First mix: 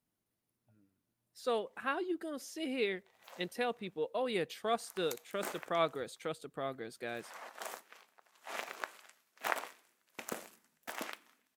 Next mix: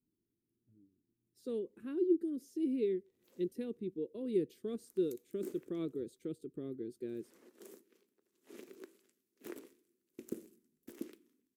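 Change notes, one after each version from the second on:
master: add drawn EQ curve 170 Hz 0 dB, 370 Hz +8 dB, 710 Hz −28 dB, 13,000 Hz −9 dB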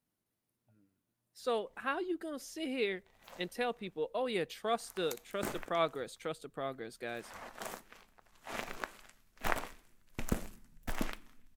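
background: remove high-pass filter 450 Hz 12 dB per octave
master: remove drawn EQ curve 170 Hz 0 dB, 370 Hz +8 dB, 710 Hz −28 dB, 13,000 Hz −9 dB

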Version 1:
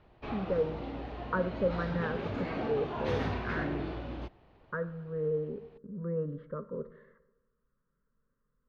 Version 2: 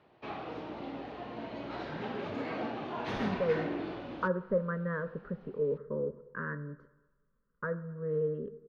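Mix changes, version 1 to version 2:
speech: entry +2.90 s
background: add high-pass filter 170 Hz 12 dB per octave

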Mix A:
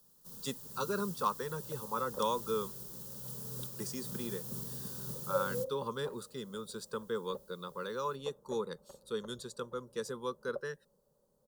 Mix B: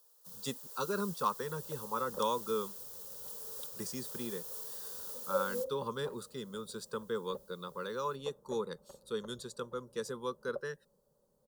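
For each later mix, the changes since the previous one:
first sound: add Butterworth high-pass 420 Hz 72 dB per octave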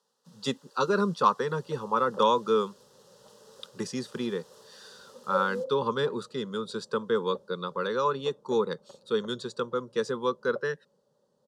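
speech +10.0 dB
second sound +3.5 dB
master: add band-pass filter 130–4,500 Hz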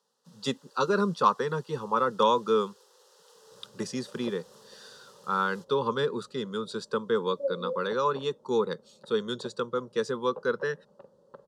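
second sound: entry +2.10 s

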